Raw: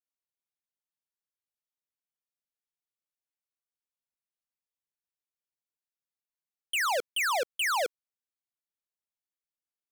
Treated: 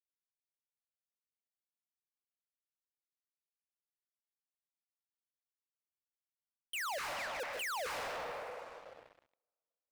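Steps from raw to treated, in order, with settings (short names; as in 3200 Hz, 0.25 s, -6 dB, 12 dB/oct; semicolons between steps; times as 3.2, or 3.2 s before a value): gate -26 dBFS, range -32 dB; 6.98–7.4 ladder band-pass 2200 Hz, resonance 50%; on a send at -3 dB: reverb RT60 2.5 s, pre-delay 0.125 s; on the sum: sample leveller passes 5; gain +9 dB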